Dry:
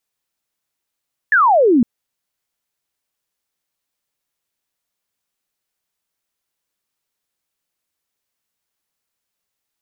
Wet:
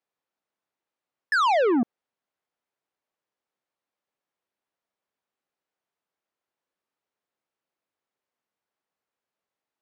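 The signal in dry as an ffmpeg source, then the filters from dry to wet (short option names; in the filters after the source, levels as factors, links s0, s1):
-f lavfi -i "aevalsrc='0.355*clip(t/0.002,0,1)*clip((0.51-t)/0.002,0,1)*sin(2*PI*1800*0.51/log(220/1800)*(exp(log(220/1800)*t/0.51)-1))':d=0.51:s=44100"
-af "bandpass=f=570:t=q:w=0.52:csg=0,asoftclip=type=tanh:threshold=0.112"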